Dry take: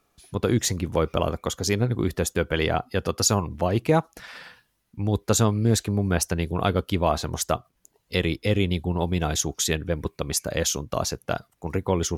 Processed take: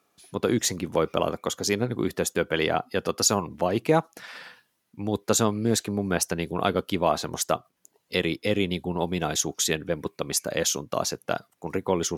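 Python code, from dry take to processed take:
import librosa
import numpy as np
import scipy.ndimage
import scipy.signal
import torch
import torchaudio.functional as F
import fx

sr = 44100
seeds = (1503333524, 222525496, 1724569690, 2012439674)

y = scipy.signal.sosfilt(scipy.signal.butter(2, 180.0, 'highpass', fs=sr, output='sos'), x)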